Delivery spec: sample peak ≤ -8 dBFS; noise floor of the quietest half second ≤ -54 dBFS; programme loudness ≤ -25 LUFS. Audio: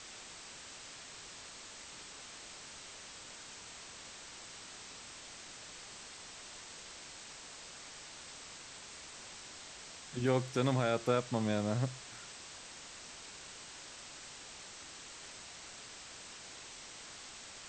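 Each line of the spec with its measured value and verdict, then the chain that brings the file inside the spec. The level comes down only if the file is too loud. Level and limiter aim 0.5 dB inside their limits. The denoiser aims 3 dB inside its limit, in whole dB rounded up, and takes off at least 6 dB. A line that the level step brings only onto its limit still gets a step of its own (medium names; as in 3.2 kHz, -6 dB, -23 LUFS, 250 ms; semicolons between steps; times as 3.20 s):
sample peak -18.0 dBFS: pass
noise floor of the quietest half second -51 dBFS: fail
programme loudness -41.5 LUFS: pass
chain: noise reduction 6 dB, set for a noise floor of -51 dBFS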